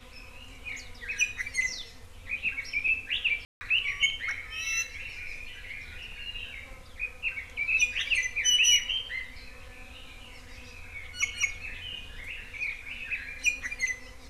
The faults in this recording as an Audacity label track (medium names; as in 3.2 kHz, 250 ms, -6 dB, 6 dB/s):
3.450000	3.610000	dropout 160 ms